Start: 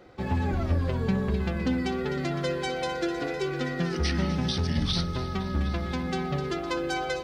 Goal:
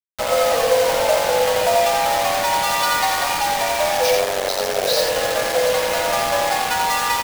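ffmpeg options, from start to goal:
-filter_complex "[0:a]acrossover=split=380[s0][s1];[s1]acompressor=mode=upward:threshold=0.0158:ratio=2.5[s2];[s0][s2]amix=inputs=2:normalize=0,asettb=1/sr,asplit=3[s3][s4][s5];[s3]atrim=end=2.694[s6];[s4]atrim=start=2.69:end=3.41,asetpts=PTS-STARTPTS,afade=t=in:d=0.004:c=qsin,afade=t=out:st=0.716:d=0.004:c=qsin,equalizer=f=125:t=o:w=1:g=6,equalizer=f=500:t=o:w=1:g=-3,equalizer=f=1000:t=o:w=1:g=5,equalizer=f=4000:t=o:w=1:g=6[s7];[s5]atrim=start=3.406[s8];[s6][s7]acrossfade=d=0.004:c1=hsin:c2=qsin[s9];[s9][s8]acrossfade=d=0.004:c1=qsin:c2=hsin,acontrast=86,asettb=1/sr,asplit=3[s10][s11][s12];[s10]atrim=end=5.604[s13];[s11]atrim=start=5.6:end=6.07,asetpts=PTS-STARTPTS,afade=t=in:d=0.004:c=qsin,afade=t=out:st=0.466:d=0.004:c=qsin,asplit=2[s14][s15];[s15]adelay=37,volume=0.447[s16];[s14][s16]amix=inputs=2:normalize=0,atrim=end_sample=20727[s17];[s12]atrim=start=6.066[s18];[s13][s17]acrossfade=d=0.004:c1=hsin:c2=qsin[s19];[s19][s18]acrossfade=d=0.004:c1=qsin:c2=hsin,afreqshift=430,asplit=3[s20][s21][s22];[s20]afade=t=out:st=4.15:d=0.02[s23];[s21]tremolo=f=95:d=0.947,afade=t=in:st=4.15:d=0.02,afade=t=out:st=4.85:d=0.02[s24];[s22]afade=t=in:st=4.85:d=0.02[s25];[s23][s24][s25]amix=inputs=3:normalize=0,acrusher=bits=3:mix=0:aa=0.000001,asplit=2[s26][s27];[s27]aecho=0:1:86:0.631[s28];[s26][s28]amix=inputs=2:normalize=0"

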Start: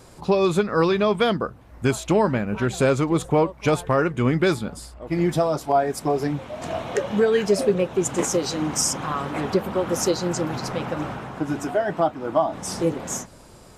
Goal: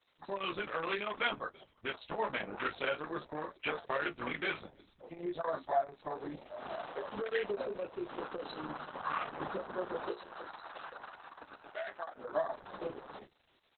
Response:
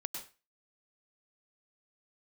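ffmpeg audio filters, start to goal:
-filter_complex "[0:a]lowpass=f=4900:w=0.5412,lowpass=f=4900:w=1.3066,asplit=2[s0][s1];[s1]adelay=20,volume=0.596[s2];[s0][s2]amix=inputs=2:normalize=0,asplit=4[s3][s4][s5][s6];[s4]adelay=330,afreqshift=-79,volume=0.112[s7];[s5]adelay=660,afreqshift=-158,volume=0.0359[s8];[s6]adelay=990,afreqshift=-237,volume=0.0115[s9];[s3][s7][s8][s9]amix=inputs=4:normalize=0,acrusher=bits=10:mix=0:aa=0.000001,afwtdn=0.0355,alimiter=limit=0.251:level=0:latency=1:release=89,asplit=3[s10][s11][s12];[s10]afade=t=out:st=10.1:d=0.02[s13];[s11]highpass=f=1200:p=1,afade=t=in:st=10.1:d=0.02,afade=t=out:st=12.15:d=0.02[s14];[s12]afade=t=in:st=12.15:d=0.02[s15];[s13][s14][s15]amix=inputs=3:normalize=0,aderivative,flanger=delay=9.9:depth=8.5:regen=50:speed=0.55:shape=triangular,volume=4.47" -ar 48000 -c:a libopus -b:a 6k

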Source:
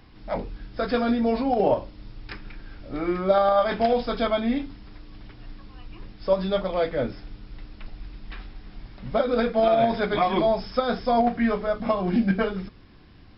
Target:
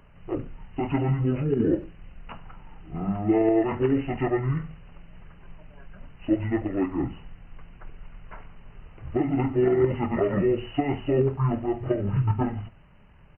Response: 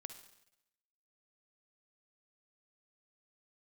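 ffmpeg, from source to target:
-filter_complex "[0:a]asplit=2[s0][s1];[s1]adelay=100,highpass=300,lowpass=3400,asoftclip=type=hard:threshold=0.126,volume=0.0398[s2];[s0][s2]amix=inputs=2:normalize=0,asplit=2[s3][s4];[1:a]atrim=start_sample=2205,afade=t=out:st=0.19:d=0.01,atrim=end_sample=8820,lowshelf=f=210:g=-4[s5];[s4][s5]afir=irnorm=-1:irlink=0,volume=1.12[s6];[s3][s6]amix=inputs=2:normalize=0,asetrate=24750,aresample=44100,atempo=1.7818,volume=0.562"

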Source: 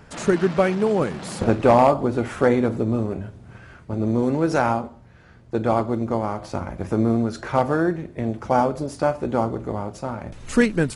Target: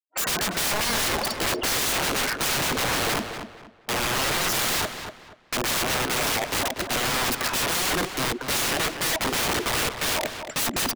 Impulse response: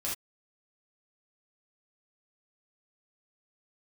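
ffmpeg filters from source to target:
-filter_complex "[0:a]acontrast=82,highpass=350,lowpass=6300,highshelf=f=2500:g=4,afftfilt=real='re*gte(hypot(re,im),0.1)':imag='im*gte(hypot(re,im),0.1)':win_size=1024:overlap=0.75,aemphasis=mode=production:type=75kf,areverse,acompressor=threshold=0.0794:ratio=4,areverse,asetrate=48091,aresample=44100,atempo=0.917004,agate=range=0.00501:threshold=0.0224:ratio=16:detection=peak,aeval=exprs='(mod(26.6*val(0)+1,2)-1)/26.6':c=same,asplit=2[s0][s1];[s1]adelay=239,lowpass=f=3700:p=1,volume=0.398,asplit=2[s2][s3];[s3]adelay=239,lowpass=f=3700:p=1,volume=0.3,asplit=2[s4][s5];[s5]adelay=239,lowpass=f=3700:p=1,volume=0.3,asplit=2[s6][s7];[s7]adelay=239,lowpass=f=3700:p=1,volume=0.3[s8];[s0][s2][s4][s6][s8]amix=inputs=5:normalize=0,volume=2.66"

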